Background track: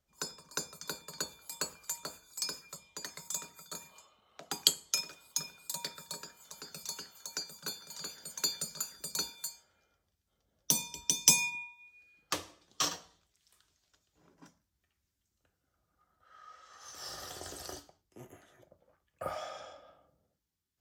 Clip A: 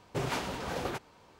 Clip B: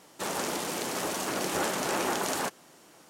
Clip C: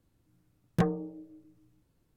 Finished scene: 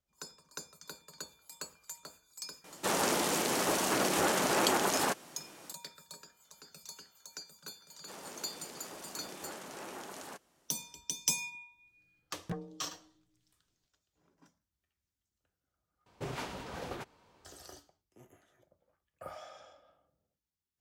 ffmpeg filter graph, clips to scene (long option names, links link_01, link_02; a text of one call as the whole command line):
ffmpeg -i bed.wav -i cue0.wav -i cue1.wav -i cue2.wav -filter_complex "[2:a]asplit=2[link_01][link_02];[0:a]volume=-7.5dB[link_03];[link_01]alimiter=level_in=19.5dB:limit=-1dB:release=50:level=0:latency=1[link_04];[link_03]asplit=2[link_05][link_06];[link_05]atrim=end=16.064[link_07];[1:a]atrim=end=1.39,asetpts=PTS-STARTPTS,volume=-6.5dB[link_08];[link_06]atrim=start=17.446[link_09];[link_04]atrim=end=3.09,asetpts=PTS-STARTPTS,volume=-17.5dB,afade=type=in:duration=0.004:curve=hsin,afade=type=out:start_time=3.086:duration=0.004:curve=hsin,adelay=2640[link_10];[link_02]atrim=end=3.09,asetpts=PTS-STARTPTS,volume=-16dB,afade=type=in:duration=0.004:curve=hsin,afade=type=out:start_time=3.086:duration=0.004:curve=hsin,adelay=7880[link_11];[3:a]atrim=end=2.16,asetpts=PTS-STARTPTS,volume=-13dB,afade=type=in:duration=0.004:curve=hsin,afade=type=out:start_time=2.156:duration=0.004:curve=hsin,adelay=11710[link_12];[link_07][link_08]acrossfade=duration=0.004:curve1=hsin:curve2=hsin[link_13];[link_13][link_09]acrossfade=duration=0.004:curve1=hsin:curve2=hsin[link_14];[link_14][link_10][link_11][link_12]amix=inputs=4:normalize=0" out.wav